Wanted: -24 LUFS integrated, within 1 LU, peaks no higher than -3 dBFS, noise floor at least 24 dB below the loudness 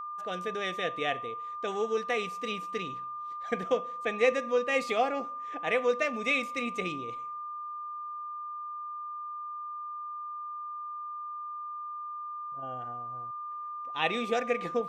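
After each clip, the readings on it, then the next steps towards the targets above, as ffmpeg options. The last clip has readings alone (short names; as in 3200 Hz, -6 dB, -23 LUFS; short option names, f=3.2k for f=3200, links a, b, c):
steady tone 1200 Hz; tone level -36 dBFS; loudness -33.0 LUFS; peak -12.5 dBFS; loudness target -24.0 LUFS
-> -af "bandreject=f=1.2k:w=30"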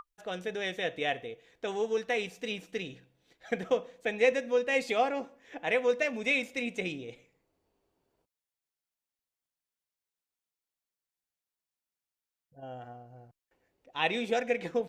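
steady tone none; loudness -31.5 LUFS; peak -12.5 dBFS; loudness target -24.0 LUFS
-> -af "volume=7.5dB"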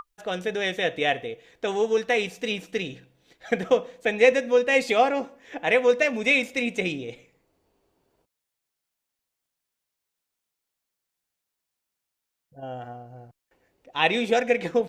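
loudness -24.0 LUFS; peak -5.0 dBFS; noise floor -84 dBFS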